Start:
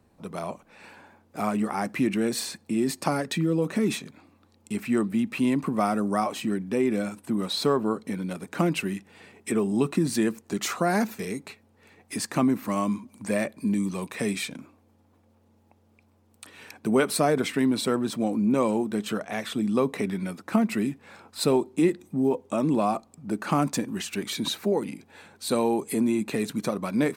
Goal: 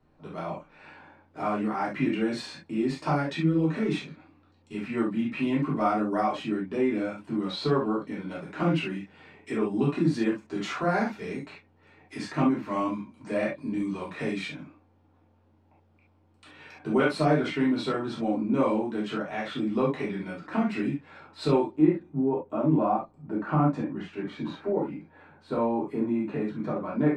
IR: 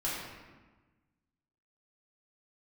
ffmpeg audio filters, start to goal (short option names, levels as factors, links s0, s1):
-filter_complex "[0:a]asetnsamples=n=441:p=0,asendcmd='21.76 lowpass f 1500',lowpass=3700[s0];[1:a]atrim=start_sample=2205,atrim=end_sample=3528[s1];[s0][s1]afir=irnorm=-1:irlink=0,volume=0.596"